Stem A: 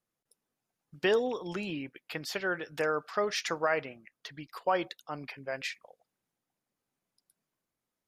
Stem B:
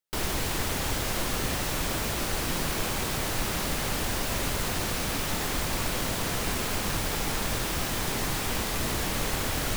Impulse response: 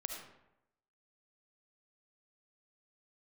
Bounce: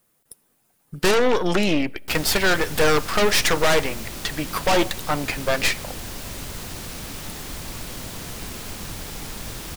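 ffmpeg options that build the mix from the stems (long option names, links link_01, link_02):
-filter_complex "[0:a]aeval=exprs='0.178*sin(PI/2*1.41*val(0)/0.178)':channel_layout=same,aexciter=amount=2.2:drive=6:freq=8100,aeval=exprs='0.2*(cos(1*acos(clip(val(0)/0.2,-1,1)))-cos(1*PI/2))+0.0631*(cos(5*acos(clip(val(0)/0.2,-1,1)))-cos(5*PI/2))+0.0562*(cos(8*acos(clip(val(0)/0.2,-1,1)))-cos(8*PI/2))':channel_layout=same,volume=1dB,asplit=2[link_01][link_02];[link_02]volume=-21dB[link_03];[1:a]acrossover=split=330|3000[link_04][link_05][link_06];[link_05]acompressor=threshold=-36dB:ratio=6[link_07];[link_04][link_07][link_06]amix=inputs=3:normalize=0,adelay=1950,volume=-3.5dB[link_08];[2:a]atrim=start_sample=2205[link_09];[link_03][link_09]afir=irnorm=-1:irlink=0[link_10];[link_01][link_08][link_10]amix=inputs=3:normalize=0"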